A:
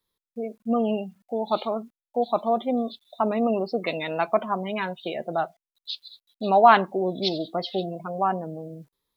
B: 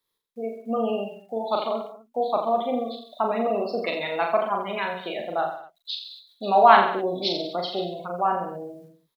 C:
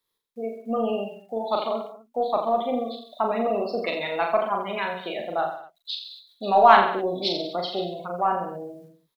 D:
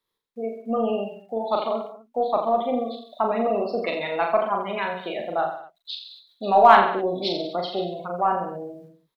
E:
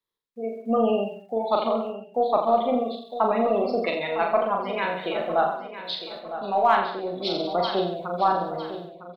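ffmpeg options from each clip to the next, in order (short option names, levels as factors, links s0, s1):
-filter_complex "[0:a]lowshelf=f=230:g=-11,asplit=2[s0][s1];[s1]aecho=0:1:40|84|132.4|185.6|244.2:0.631|0.398|0.251|0.158|0.1[s2];[s0][s2]amix=inputs=2:normalize=0"
-af "aeval=exprs='0.891*(cos(1*acos(clip(val(0)/0.891,-1,1)))-cos(1*PI/2))+0.00501*(cos(8*acos(clip(val(0)/0.891,-1,1)))-cos(8*PI/2))':c=same"
-filter_complex "[0:a]highshelf=f=4500:g=-8.5,asplit=2[s0][s1];[s1]volume=2.24,asoftclip=hard,volume=0.447,volume=0.422[s2];[s0][s2]amix=inputs=2:normalize=0,volume=0.841"
-filter_complex "[0:a]dynaudnorm=f=100:g=9:m=3.55,asplit=2[s0][s1];[s1]adelay=956,lowpass=f=4900:p=1,volume=0.266,asplit=2[s2][s3];[s3]adelay=956,lowpass=f=4900:p=1,volume=0.4,asplit=2[s4][s5];[s5]adelay=956,lowpass=f=4900:p=1,volume=0.4,asplit=2[s6][s7];[s7]adelay=956,lowpass=f=4900:p=1,volume=0.4[s8];[s2][s4][s6][s8]amix=inputs=4:normalize=0[s9];[s0][s9]amix=inputs=2:normalize=0,volume=0.422"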